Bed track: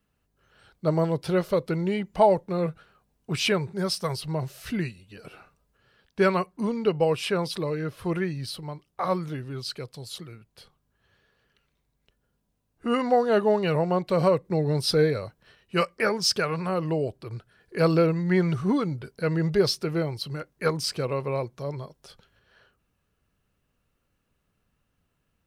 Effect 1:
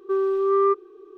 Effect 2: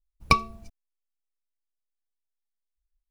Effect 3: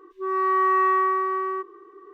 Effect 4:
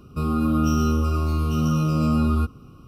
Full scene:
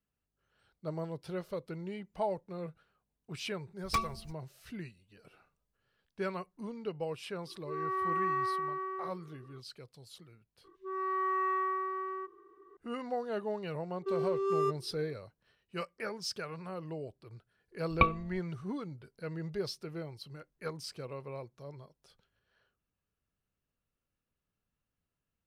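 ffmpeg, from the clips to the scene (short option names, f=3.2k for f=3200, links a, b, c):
-filter_complex "[2:a]asplit=2[a][b];[3:a]asplit=2[c][d];[0:a]volume=-14.5dB[e];[a]asoftclip=type=hard:threshold=-19.5dB[f];[1:a]adynamicsmooth=sensitivity=7.5:basefreq=900[g];[b]aresample=8000,aresample=44100[h];[f]atrim=end=3.1,asetpts=PTS-STARTPTS,volume=-5dB,afade=t=in:d=0.004:c=hsin,afade=t=out:st=3.096:d=0.004:c=hsin,adelay=3630[i];[c]atrim=end=2.13,asetpts=PTS-STARTPTS,volume=-12dB,afade=t=in:d=0.004:c=hsin,afade=t=out:st=2.126:d=0.004:c=hsin,adelay=7470[j];[d]atrim=end=2.13,asetpts=PTS-STARTPTS,volume=-11.5dB,afade=t=in:d=0.004:c=hsin,afade=t=out:st=2.126:d=0.004:c=hsin,adelay=10640[k];[g]atrim=end=1.17,asetpts=PTS-STARTPTS,volume=-11dB,afade=t=in:d=0.004:c=hsin,afade=t=out:st=1.166:d=0.004:c=hsin,adelay=13970[l];[h]atrim=end=3.1,asetpts=PTS-STARTPTS,volume=-5dB,afade=t=in:d=0.004:c=hsin,afade=t=out:st=3.096:d=0.004:c=hsin,adelay=17700[m];[e][i][j][k][l][m]amix=inputs=6:normalize=0"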